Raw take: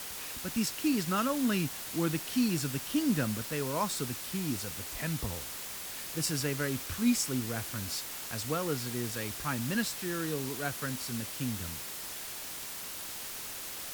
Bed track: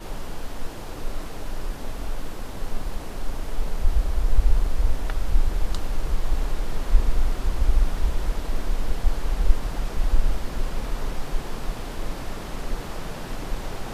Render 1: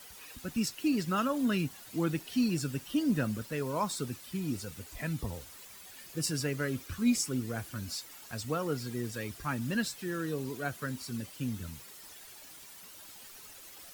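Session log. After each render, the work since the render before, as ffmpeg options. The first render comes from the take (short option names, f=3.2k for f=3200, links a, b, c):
-af "afftdn=nr=12:nf=-41"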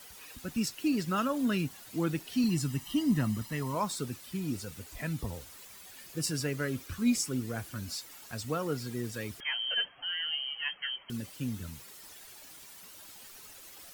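-filter_complex "[0:a]asettb=1/sr,asplit=3[a][b][c];[a]atrim=end=2.444[d];[b]atrim=start=2.44:end=3.75,asetpts=PTS-STARTPTS,afade=t=in:d=0.004:c=qsin,afade=t=out:st=1.306:d=0.004:c=qsin,aecho=1:1:1:0.66,atrim=end_sample=57771[e];[c]atrim=start=3.746[f];[d][e]acrossfade=d=0.004:c1=hsin:c2=qsin[g];[g][f]acrossfade=d=0.004:c1=qsin:c2=hsin,asettb=1/sr,asplit=3[h][i][j];[h]atrim=end=9.404[k];[i]atrim=start=9.4:end=11.1,asetpts=PTS-STARTPTS,afade=t=in:d=0.004:c=qsin,afade=t=out:st=1.696:d=0.004:c=qsin,lowpass=f=2.8k:t=q:w=0.5098,lowpass=f=2.8k:t=q:w=0.6013,lowpass=f=2.8k:t=q:w=0.9,lowpass=f=2.8k:t=q:w=2.563,afreqshift=-3300[l];[j]atrim=start=11.096[m];[k][l]acrossfade=d=0.004:c1=hsin:c2=qsin[n];[n][m]acrossfade=d=0.004:c1=qsin:c2=hsin"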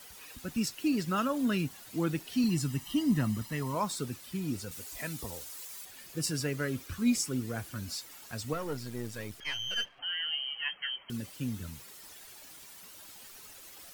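-filter_complex "[0:a]asettb=1/sr,asplit=3[a][b][c];[a]atrim=end=4.714[d];[b]atrim=start=4.71:end=5.85,asetpts=PTS-STARTPTS,afade=t=in:d=0.004:c=qsin,afade=t=out:st=1.136:d=0.004:c=qsin,bass=f=250:g=-8,treble=f=4k:g=7[e];[c]atrim=start=5.846[f];[d][e]acrossfade=d=0.004:c1=hsin:c2=qsin[g];[g][f]acrossfade=d=0.004:c1=qsin:c2=hsin,asettb=1/sr,asplit=3[h][i][j];[h]atrim=end=8.534[k];[i]atrim=start=8.53:end=9.99,asetpts=PTS-STARTPTS,afade=t=in:d=0.004:c=qsin,afade=t=out:st=1.456:d=0.004:c=qsin,aeval=exprs='if(lt(val(0),0),0.447*val(0),val(0))':c=same[l];[j]atrim=start=9.986[m];[k][l]acrossfade=d=0.004:c1=hsin:c2=qsin[n];[n][m]acrossfade=d=0.004:c1=qsin:c2=hsin"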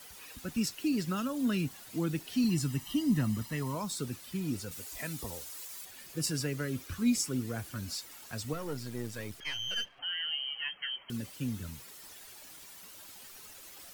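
-filter_complex "[0:a]acrossover=split=330|3000[a][b][c];[b]acompressor=threshold=-37dB:ratio=6[d];[a][d][c]amix=inputs=3:normalize=0"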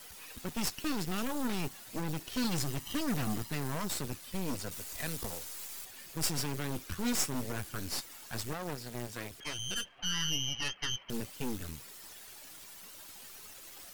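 -filter_complex "[0:a]aeval=exprs='0.119*(cos(1*acos(clip(val(0)/0.119,-1,1)))-cos(1*PI/2))+0.0237*(cos(8*acos(clip(val(0)/0.119,-1,1)))-cos(8*PI/2))':c=same,acrossover=split=2800[a][b];[a]volume=28.5dB,asoftclip=hard,volume=-28.5dB[c];[c][b]amix=inputs=2:normalize=0"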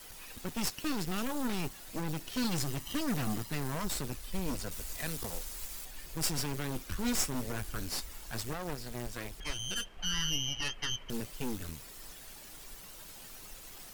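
-filter_complex "[1:a]volume=-25.5dB[a];[0:a][a]amix=inputs=2:normalize=0"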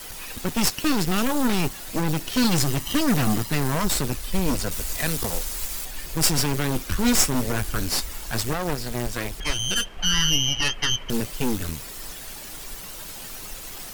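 -af "volume=12dB"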